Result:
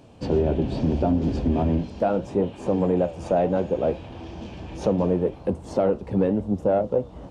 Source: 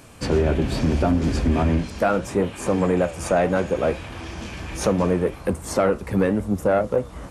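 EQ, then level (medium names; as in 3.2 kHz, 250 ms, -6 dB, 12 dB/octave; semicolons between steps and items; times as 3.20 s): tape spacing loss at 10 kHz 23 dB; bass shelf 61 Hz -10 dB; high-order bell 1.6 kHz -9.5 dB 1.3 oct; 0.0 dB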